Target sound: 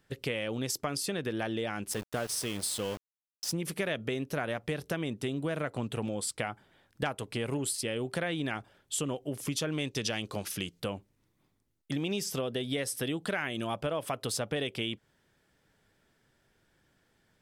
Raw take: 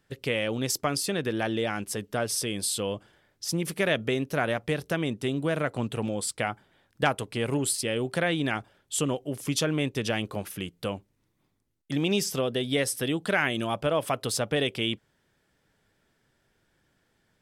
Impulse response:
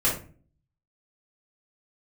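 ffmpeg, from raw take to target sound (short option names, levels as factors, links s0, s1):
-filter_complex "[0:a]asettb=1/sr,asplit=3[s0][s1][s2];[s0]atrim=end=9.724[s3];[s1]atrim=start=9.72:end=10.8,asetpts=PTS-STARTPTS,afade=t=in:d=0.004:c=qsin,afade=t=out:st=1.076:d=0.004:c=qsin,equalizer=f=5400:w=0.84:g=10[s4];[s2]atrim=start=10.796[s5];[s3][s4]acrossfade=d=0.004:c1=hsin:c2=qsin[s6];[s6][s5]acrossfade=d=0.004:c1=qsin:c2=hsin,acompressor=threshold=0.0282:ratio=3,asettb=1/sr,asplit=3[s7][s8][s9];[s7]atrim=end=1.914[s10];[s8]atrim=start=1.91:end=3.52,asetpts=PTS-STARTPTS,afade=t=in:d=0.004:c=qsin,afade=t=out:st=1.606:d=0.004:c=qsin,aeval=exprs='val(0)*gte(abs(val(0)),0.0119)':c=same[s11];[s9]atrim=start=3.516[s12];[s10][s11]acrossfade=d=0.004:c1=hsin:c2=qsin[s13];[s13][s12]acrossfade=d=0.004:c1=qsin:c2=hsin"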